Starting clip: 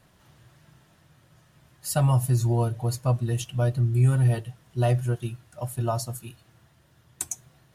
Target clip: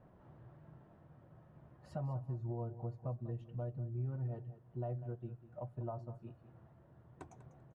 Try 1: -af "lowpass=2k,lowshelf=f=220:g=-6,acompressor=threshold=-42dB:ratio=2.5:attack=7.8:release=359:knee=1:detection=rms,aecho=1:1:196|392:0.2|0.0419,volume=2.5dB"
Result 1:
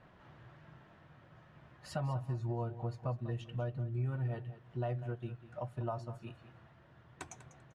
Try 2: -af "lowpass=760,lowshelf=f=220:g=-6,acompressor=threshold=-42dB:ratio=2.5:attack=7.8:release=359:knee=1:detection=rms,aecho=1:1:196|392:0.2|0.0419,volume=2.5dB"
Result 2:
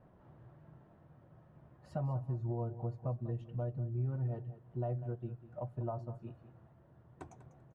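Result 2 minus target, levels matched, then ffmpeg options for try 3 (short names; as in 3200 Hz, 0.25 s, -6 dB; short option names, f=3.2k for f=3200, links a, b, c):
compressor: peak gain reduction -3.5 dB
-af "lowpass=760,lowshelf=f=220:g=-6,acompressor=threshold=-48dB:ratio=2.5:attack=7.8:release=359:knee=1:detection=rms,aecho=1:1:196|392:0.2|0.0419,volume=2.5dB"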